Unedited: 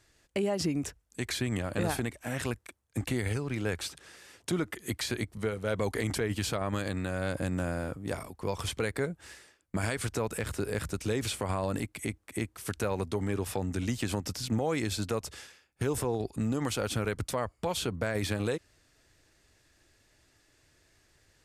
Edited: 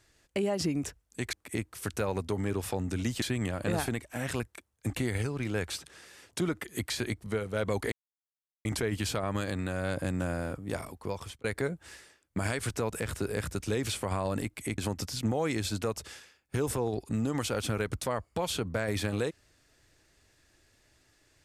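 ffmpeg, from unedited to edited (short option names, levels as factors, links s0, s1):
-filter_complex "[0:a]asplit=6[s0][s1][s2][s3][s4][s5];[s0]atrim=end=1.332[s6];[s1]atrim=start=12.158:end=14.052[s7];[s2]atrim=start=1.328:end=6.03,asetpts=PTS-STARTPTS,afade=t=out:st=4.698:d=0.004:c=hsin,apad=pad_dur=0.73[s8];[s3]atrim=start=6.03:end=8.82,asetpts=PTS-STARTPTS,afade=t=in:d=0.004:c=hsin,afade=t=out:st=2.35:d=0.44[s9];[s4]atrim=start=8.82:end=12.162,asetpts=PTS-STARTPTS,afade=t=in:d=0.004:c=hsin[s10];[s5]atrim=start=14.048[s11];[s6][s7]acrossfade=d=0.004:c1=hsin:c2=hsin[s12];[s8][s9][s10]concat=n=3:v=0:a=1[s13];[s12][s13]acrossfade=d=0.004:c1=hsin:c2=hsin[s14];[s14][s11]acrossfade=d=0.004:c1=hsin:c2=hsin"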